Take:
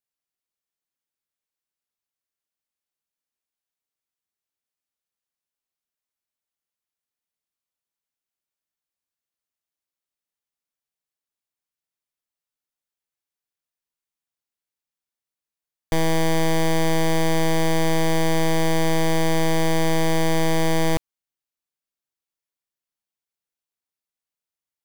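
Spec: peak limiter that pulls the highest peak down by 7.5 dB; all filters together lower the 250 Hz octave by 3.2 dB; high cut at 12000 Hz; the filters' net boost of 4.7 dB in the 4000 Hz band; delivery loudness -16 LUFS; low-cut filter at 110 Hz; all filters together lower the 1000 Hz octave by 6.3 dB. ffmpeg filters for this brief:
-af "highpass=110,lowpass=12k,equalizer=f=250:t=o:g=-4.5,equalizer=f=1k:t=o:g=-8,equalizer=f=4k:t=o:g=6.5,volume=15dB,alimiter=limit=-2dB:level=0:latency=1"

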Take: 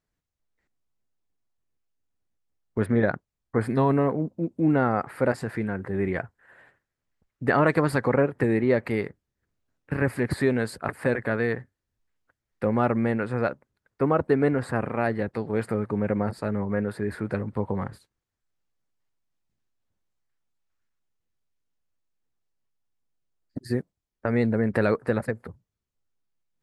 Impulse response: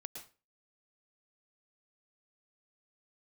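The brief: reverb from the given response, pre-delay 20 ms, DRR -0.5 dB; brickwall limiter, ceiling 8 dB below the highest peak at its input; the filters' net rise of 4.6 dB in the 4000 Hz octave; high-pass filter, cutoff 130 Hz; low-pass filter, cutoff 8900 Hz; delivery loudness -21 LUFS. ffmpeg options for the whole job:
-filter_complex "[0:a]highpass=130,lowpass=8.9k,equalizer=f=4k:t=o:g=5.5,alimiter=limit=-13dB:level=0:latency=1,asplit=2[a][b];[1:a]atrim=start_sample=2205,adelay=20[c];[b][c]afir=irnorm=-1:irlink=0,volume=4dB[d];[a][d]amix=inputs=2:normalize=0,volume=3.5dB"

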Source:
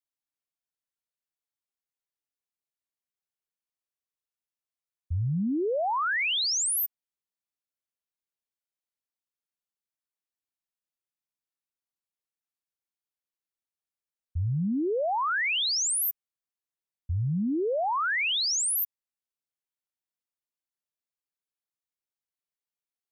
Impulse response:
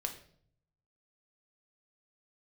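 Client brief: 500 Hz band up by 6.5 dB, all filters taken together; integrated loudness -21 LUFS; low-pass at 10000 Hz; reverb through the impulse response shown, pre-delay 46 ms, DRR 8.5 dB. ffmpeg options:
-filter_complex "[0:a]lowpass=10k,equalizer=f=500:t=o:g=8,asplit=2[a][b];[1:a]atrim=start_sample=2205,adelay=46[c];[b][c]afir=irnorm=-1:irlink=0,volume=-9dB[d];[a][d]amix=inputs=2:normalize=0,volume=3.5dB"

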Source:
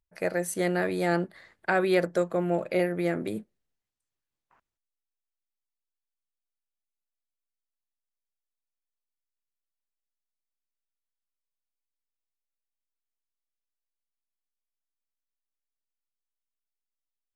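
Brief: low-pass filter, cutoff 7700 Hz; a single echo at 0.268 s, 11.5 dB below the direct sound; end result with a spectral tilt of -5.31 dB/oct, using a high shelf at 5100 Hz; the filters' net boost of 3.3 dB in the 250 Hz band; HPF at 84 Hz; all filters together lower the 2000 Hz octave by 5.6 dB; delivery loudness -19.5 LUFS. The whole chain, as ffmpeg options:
-af "highpass=84,lowpass=7.7k,equalizer=f=250:t=o:g=6.5,equalizer=f=2k:t=o:g=-8,highshelf=f=5.1k:g=4,aecho=1:1:268:0.266,volume=6.5dB"

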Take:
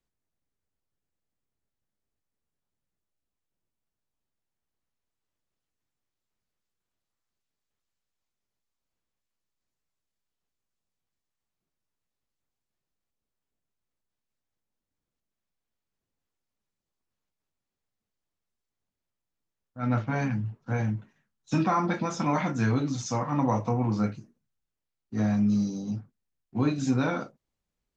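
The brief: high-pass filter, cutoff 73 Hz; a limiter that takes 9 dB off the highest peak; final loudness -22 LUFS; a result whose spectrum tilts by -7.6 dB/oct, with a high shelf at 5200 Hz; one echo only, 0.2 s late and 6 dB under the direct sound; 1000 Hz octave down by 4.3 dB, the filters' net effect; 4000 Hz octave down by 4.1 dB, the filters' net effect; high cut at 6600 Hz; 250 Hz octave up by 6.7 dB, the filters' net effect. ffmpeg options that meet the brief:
-af "highpass=73,lowpass=6.6k,equalizer=f=250:t=o:g=8.5,equalizer=f=1k:t=o:g=-6,equalizer=f=4k:t=o:g=-7,highshelf=f=5.2k:g=5.5,alimiter=limit=-17.5dB:level=0:latency=1,aecho=1:1:200:0.501,volume=4dB"

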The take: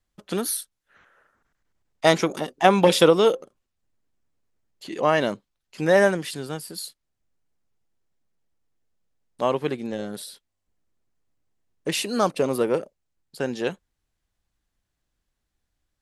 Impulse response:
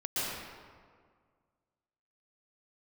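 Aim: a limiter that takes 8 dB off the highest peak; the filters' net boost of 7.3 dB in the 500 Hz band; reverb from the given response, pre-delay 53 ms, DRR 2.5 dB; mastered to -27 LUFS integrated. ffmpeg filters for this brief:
-filter_complex "[0:a]equalizer=f=500:t=o:g=8.5,alimiter=limit=-6dB:level=0:latency=1,asplit=2[a][b];[1:a]atrim=start_sample=2205,adelay=53[c];[b][c]afir=irnorm=-1:irlink=0,volume=-9.5dB[d];[a][d]amix=inputs=2:normalize=0,volume=-8.5dB"

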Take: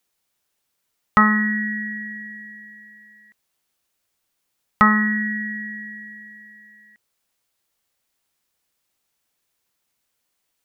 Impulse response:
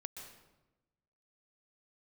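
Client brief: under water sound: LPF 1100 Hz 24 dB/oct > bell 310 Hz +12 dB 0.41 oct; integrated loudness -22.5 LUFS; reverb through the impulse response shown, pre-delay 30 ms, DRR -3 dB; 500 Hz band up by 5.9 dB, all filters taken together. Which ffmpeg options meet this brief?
-filter_complex "[0:a]equalizer=f=500:t=o:g=5.5,asplit=2[a][b];[1:a]atrim=start_sample=2205,adelay=30[c];[b][c]afir=irnorm=-1:irlink=0,volume=6dB[d];[a][d]amix=inputs=2:normalize=0,lowpass=f=1.1k:w=0.5412,lowpass=f=1.1k:w=1.3066,equalizer=f=310:t=o:w=0.41:g=12,volume=-1.5dB"

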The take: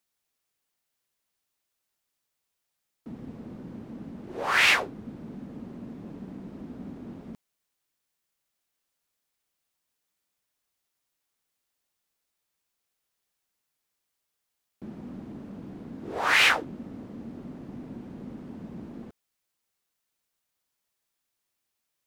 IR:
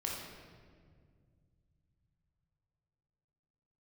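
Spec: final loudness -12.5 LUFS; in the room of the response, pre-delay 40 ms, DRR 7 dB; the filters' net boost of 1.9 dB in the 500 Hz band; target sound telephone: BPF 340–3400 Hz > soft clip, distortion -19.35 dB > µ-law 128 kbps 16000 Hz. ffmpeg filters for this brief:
-filter_complex "[0:a]equalizer=f=500:t=o:g=3.5,asplit=2[a][b];[1:a]atrim=start_sample=2205,adelay=40[c];[b][c]afir=irnorm=-1:irlink=0,volume=-9.5dB[d];[a][d]amix=inputs=2:normalize=0,highpass=340,lowpass=3.4k,asoftclip=threshold=-12.5dB,volume=12.5dB" -ar 16000 -c:a pcm_mulaw

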